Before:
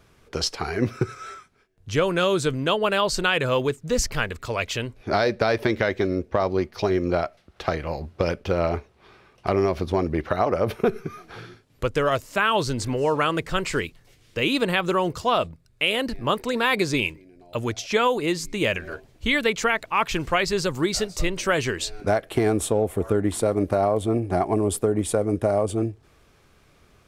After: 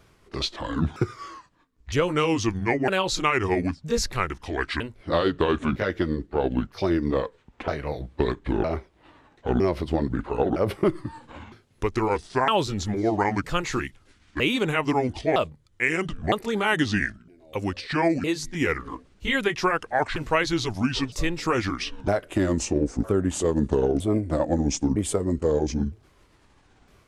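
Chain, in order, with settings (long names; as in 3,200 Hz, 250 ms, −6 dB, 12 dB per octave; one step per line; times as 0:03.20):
pitch shifter swept by a sawtooth −8.5 semitones, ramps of 960 ms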